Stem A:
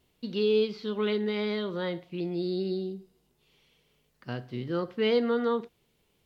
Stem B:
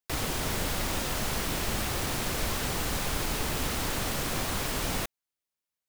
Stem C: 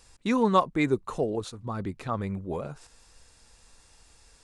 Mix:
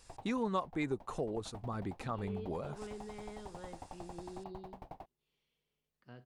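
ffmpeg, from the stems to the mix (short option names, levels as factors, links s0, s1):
-filter_complex "[0:a]acrossover=split=2600[s0][s1];[s1]acompressor=threshold=0.00282:ratio=4:attack=1:release=60[s2];[s0][s2]amix=inputs=2:normalize=0,adelay=1800,volume=0.126[s3];[1:a]firequalizer=gain_entry='entry(480,0);entry(790,13);entry(1300,-9);entry(7200,-26)':delay=0.05:min_phase=1,aeval=exprs='val(0)*pow(10,-35*if(lt(mod(11*n/s,1),2*abs(11)/1000),1-mod(11*n/s,1)/(2*abs(11)/1000),(mod(11*n/s,1)-2*abs(11)/1000)/(1-2*abs(11)/1000))/20)':c=same,volume=0.251[s4];[2:a]volume=0.631[s5];[s3][s4][s5]amix=inputs=3:normalize=0,acompressor=threshold=0.0141:ratio=2"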